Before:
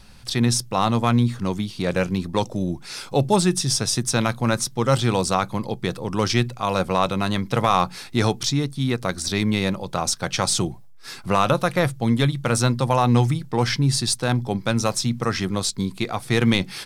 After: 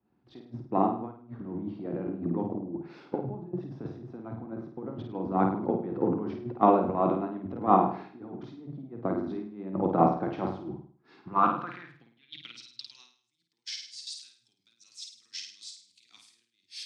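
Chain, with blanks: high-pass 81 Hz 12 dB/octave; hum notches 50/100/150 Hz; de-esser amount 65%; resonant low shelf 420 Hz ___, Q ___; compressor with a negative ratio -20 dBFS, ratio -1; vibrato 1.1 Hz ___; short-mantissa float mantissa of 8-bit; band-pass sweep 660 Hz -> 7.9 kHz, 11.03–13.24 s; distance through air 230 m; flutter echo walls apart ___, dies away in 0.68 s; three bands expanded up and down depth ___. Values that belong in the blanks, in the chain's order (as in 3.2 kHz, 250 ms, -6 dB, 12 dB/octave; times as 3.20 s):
+9.5 dB, 3, 16 cents, 9 m, 100%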